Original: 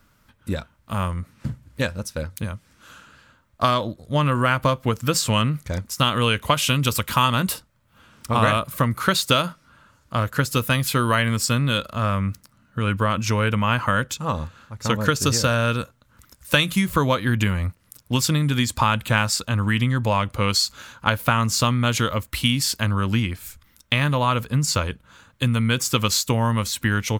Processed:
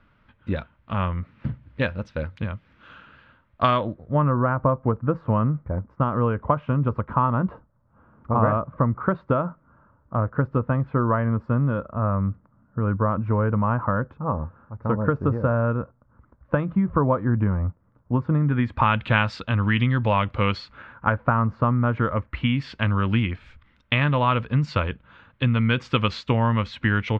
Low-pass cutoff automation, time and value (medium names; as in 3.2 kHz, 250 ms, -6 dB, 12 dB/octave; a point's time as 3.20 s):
low-pass 24 dB/octave
3.68 s 3.1 kHz
4.34 s 1.2 kHz
18.28 s 1.2 kHz
19.02 s 3.2 kHz
20.39 s 3.2 kHz
21.28 s 1.4 kHz
21.84 s 1.4 kHz
22.82 s 3 kHz